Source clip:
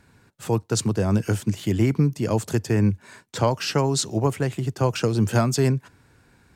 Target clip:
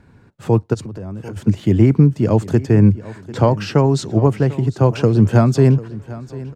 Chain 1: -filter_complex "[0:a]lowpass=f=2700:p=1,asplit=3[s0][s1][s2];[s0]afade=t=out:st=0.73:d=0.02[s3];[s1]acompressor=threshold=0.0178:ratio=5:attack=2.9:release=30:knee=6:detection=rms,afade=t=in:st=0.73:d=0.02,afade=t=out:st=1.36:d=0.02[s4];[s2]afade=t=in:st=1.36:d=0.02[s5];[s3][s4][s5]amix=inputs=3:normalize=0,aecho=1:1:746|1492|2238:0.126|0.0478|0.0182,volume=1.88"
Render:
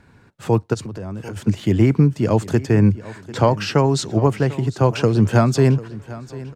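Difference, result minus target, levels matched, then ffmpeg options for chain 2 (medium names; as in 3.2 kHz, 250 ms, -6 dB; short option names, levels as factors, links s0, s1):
1 kHz band +3.5 dB
-filter_complex "[0:a]lowpass=f=2700:p=1,tiltshelf=f=730:g=3.5,asplit=3[s0][s1][s2];[s0]afade=t=out:st=0.73:d=0.02[s3];[s1]acompressor=threshold=0.0178:ratio=5:attack=2.9:release=30:knee=6:detection=rms,afade=t=in:st=0.73:d=0.02,afade=t=out:st=1.36:d=0.02[s4];[s2]afade=t=in:st=1.36:d=0.02[s5];[s3][s4][s5]amix=inputs=3:normalize=0,aecho=1:1:746|1492|2238:0.126|0.0478|0.0182,volume=1.88"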